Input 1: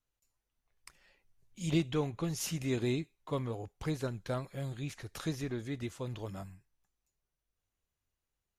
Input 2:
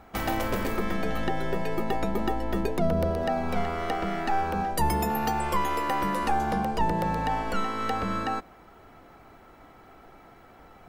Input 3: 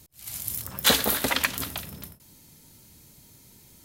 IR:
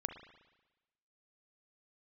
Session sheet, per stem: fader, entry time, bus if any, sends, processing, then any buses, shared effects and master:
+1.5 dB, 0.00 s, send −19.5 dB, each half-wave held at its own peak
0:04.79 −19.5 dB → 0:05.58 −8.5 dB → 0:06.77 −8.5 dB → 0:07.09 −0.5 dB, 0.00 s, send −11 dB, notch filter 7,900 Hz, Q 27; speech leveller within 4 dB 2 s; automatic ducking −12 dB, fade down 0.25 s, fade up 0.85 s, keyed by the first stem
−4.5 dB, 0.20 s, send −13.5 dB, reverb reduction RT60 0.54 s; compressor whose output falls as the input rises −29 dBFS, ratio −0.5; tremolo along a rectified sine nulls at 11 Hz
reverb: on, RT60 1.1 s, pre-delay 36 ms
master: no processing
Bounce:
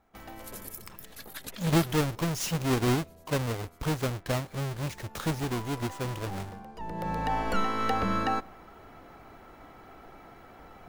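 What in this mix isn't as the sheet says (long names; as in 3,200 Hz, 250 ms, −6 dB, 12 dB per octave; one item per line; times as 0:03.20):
stem 3 −4.5 dB → −11.5 dB
reverb return −7.0 dB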